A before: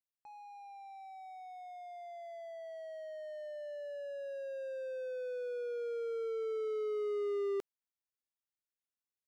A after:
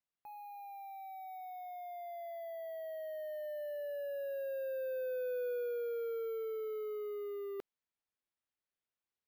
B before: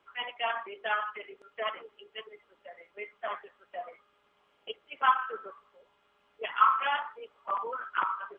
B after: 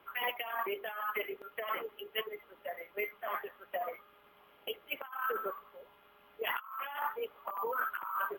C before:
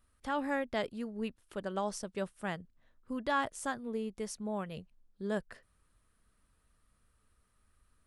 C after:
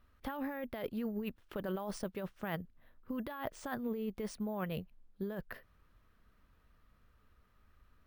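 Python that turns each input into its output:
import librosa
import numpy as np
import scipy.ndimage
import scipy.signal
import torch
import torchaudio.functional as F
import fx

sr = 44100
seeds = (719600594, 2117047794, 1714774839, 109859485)

y = scipy.signal.sosfilt(scipy.signal.butter(2, 3700.0, 'lowpass', fs=sr, output='sos'), x)
y = fx.over_compress(y, sr, threshold_db=-39.0, ratio=-1.0)
y = np.repeat(y[::3], 3)[:len(y)]
y = F.gain(torch.from_numpy(y), 1.0).numpy()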